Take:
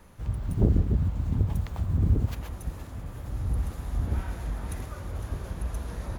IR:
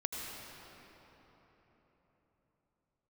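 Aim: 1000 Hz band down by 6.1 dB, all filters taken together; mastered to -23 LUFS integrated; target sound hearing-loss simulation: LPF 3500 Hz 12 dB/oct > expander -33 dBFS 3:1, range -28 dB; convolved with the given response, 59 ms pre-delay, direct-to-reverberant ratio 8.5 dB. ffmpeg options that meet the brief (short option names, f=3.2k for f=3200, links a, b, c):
-filter_complex "[0:a]equalizer=f=1k:t=o:g=-8,asplit=2[a][b];[1:a]atrim=start_sample=2205,adelay=59[c];[b][c]afir=irnorm=-1:irlink=0,volume=-11dB[d];[a][d]amix=inputs=2:normalize=0,lowpass=3.5k,agate=range=-28dB:threshold=-33dB:ratio=3,volume=6.5dB"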